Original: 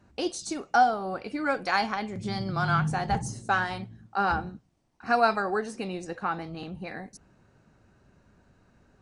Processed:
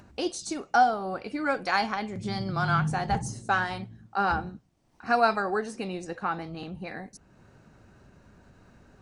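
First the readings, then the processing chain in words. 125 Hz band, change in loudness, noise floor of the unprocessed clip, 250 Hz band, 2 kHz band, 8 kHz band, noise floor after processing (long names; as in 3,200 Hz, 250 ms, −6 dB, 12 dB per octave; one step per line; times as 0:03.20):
0.0 dB, 0.0 dB, −64 dBFS, 0.0 dB, 0.0 dB, 0.0 dB, −61 dBFS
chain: upward compression, threshold −47 dBFS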